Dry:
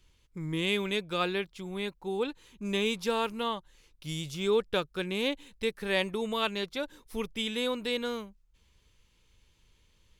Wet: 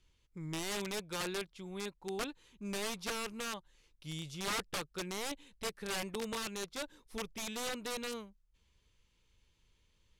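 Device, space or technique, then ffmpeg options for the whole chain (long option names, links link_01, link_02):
overflowing digital effects unit: -af "aeval=exprs='(mod(15.8*val(0)+1,2)-1)/15.8':channel_layout=same,lowpass=11000,volume=-6.5dB"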